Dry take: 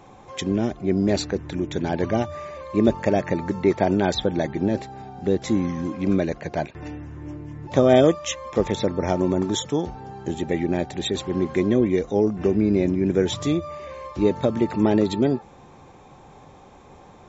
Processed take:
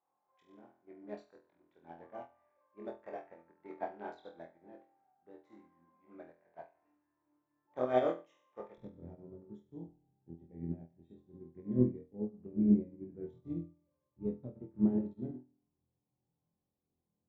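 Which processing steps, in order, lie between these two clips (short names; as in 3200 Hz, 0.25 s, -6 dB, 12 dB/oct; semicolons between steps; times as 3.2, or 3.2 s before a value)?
Wiener smoothing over 9 samples; band-pass 1000 Hz, Q 1.1, from 8.78 s 150 Hz; flutter echo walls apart 4.1 m, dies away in 0.6 s; spring tank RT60 1.2 s, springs 34 ms, DRR 18.5 dB; upward expander 2.5:1, over -33 dBFS; gain -7 dB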